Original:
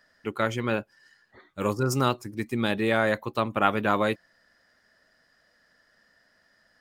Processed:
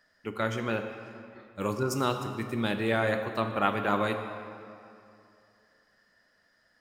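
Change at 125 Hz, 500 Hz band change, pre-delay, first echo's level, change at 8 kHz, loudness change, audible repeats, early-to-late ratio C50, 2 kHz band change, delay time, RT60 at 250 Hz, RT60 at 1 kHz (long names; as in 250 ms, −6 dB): −3.5 dB, −3.0 dB, 10 ms, no echo audible, −3.5 dB, −3.5 dB, no echo audible, 7.0 dB, −3.5 dB, no echo audible, 2.5 s, 2.6 s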